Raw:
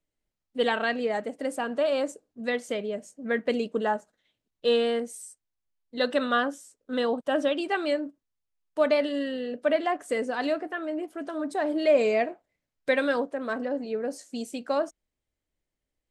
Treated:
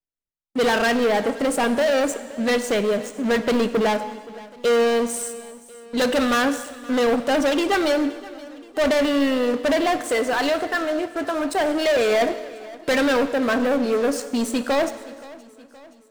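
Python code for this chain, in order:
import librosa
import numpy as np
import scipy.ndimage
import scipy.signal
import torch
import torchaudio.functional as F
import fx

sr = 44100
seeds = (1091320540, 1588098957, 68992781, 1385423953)

y = fx.highpass(x, sr, hz=560.0, slope=6, at=(10.01, 12.22))
y = fx.leveller(y, sr, passes=5)
y = fx.echo_feedback(y, sr, ms=522, feedback_pct=53, wet_db=-20.0)
y = fx.rev_gated(y, sr, seeds[0], gate_ms=470, shape='falling', drr_db=11.0)
y = F.gain(torch.from_numpy(y), -4.5).numpy()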